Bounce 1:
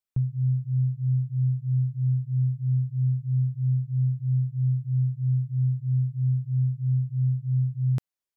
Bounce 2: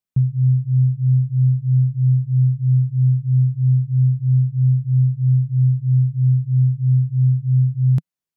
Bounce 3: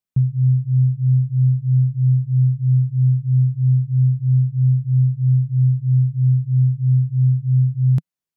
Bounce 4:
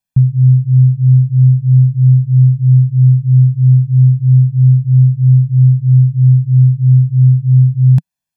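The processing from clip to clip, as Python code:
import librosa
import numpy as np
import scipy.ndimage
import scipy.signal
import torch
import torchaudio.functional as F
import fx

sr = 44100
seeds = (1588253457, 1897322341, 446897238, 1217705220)

y1 = fx.peak_eq(x, sr, hz=160.0, db=11.5, octaves=1.1)
y2 = y1
y3 = y2 + 0.75 * np.pad(y2, (int(1.2 * sr / 1000.0), 0))[:len(y2)]
y3 = y3 * 10.0 ** (4.0 / 20.0)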